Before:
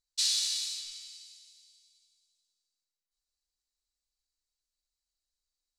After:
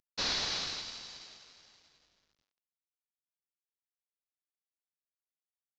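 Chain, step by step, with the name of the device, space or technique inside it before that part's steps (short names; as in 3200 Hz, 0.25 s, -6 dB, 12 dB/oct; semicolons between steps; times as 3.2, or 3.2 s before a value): early wireless headset (HPF 290 Hz 12 dB/oct; CVSD 32 kbps)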